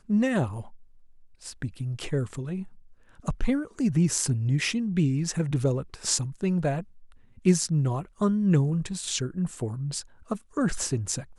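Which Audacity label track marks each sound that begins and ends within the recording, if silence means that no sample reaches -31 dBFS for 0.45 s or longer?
1.460000	2.630000	sound
3.270000	6.820000	sound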